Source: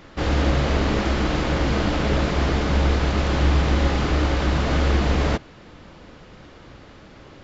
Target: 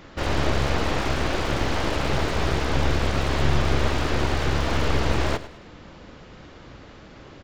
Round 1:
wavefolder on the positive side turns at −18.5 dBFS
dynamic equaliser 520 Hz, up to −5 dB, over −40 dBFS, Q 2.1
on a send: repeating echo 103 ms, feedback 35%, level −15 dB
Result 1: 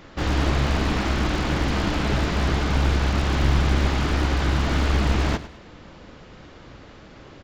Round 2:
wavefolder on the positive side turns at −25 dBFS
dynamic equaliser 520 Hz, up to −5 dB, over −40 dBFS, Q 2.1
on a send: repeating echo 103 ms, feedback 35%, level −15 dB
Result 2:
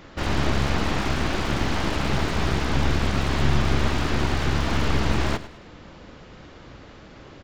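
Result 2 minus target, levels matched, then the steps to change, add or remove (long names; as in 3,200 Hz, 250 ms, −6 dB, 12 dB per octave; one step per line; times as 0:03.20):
500 Hz band −3.0 dB
change: dynamic equaliser 200 Hz, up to −5 dB, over −40 dBFS, Q 2.1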